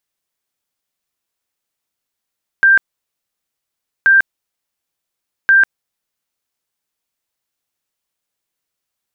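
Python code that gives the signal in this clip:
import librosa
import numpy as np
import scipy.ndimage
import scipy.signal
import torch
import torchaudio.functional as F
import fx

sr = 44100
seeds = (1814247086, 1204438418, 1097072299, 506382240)

y = fx.tone_burst(sr, hz=1580.0, cycles=231, every_s=1.43, bursts=3, level_db=-6.0)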